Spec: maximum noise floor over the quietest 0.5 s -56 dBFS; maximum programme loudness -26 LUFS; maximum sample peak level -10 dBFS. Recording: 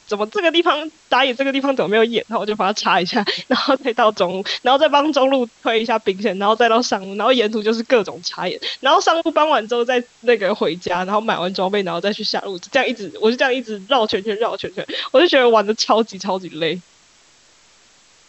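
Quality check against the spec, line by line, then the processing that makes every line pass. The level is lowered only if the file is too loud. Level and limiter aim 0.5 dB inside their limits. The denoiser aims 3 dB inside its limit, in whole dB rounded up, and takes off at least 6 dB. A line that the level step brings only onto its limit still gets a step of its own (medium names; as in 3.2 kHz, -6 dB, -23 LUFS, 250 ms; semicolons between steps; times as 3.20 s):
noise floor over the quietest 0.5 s -52 dBFS: fail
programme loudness -18.0 LUFS: fail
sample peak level -3.5 dBFS: fail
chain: trim -8.5 dB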